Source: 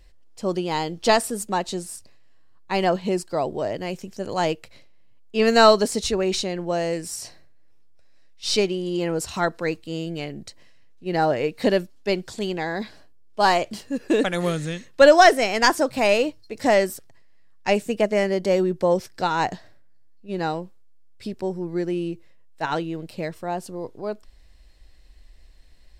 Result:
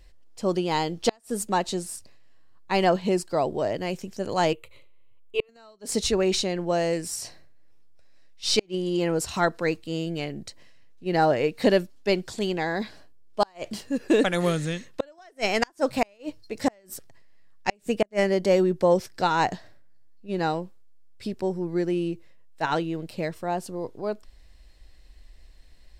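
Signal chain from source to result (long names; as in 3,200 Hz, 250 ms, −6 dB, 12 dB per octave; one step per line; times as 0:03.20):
gate with flip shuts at −9 dBFS, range −38 dB
0:04.53–0:05.49: phaser with its sweep stopped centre 1,100 Hz, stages 8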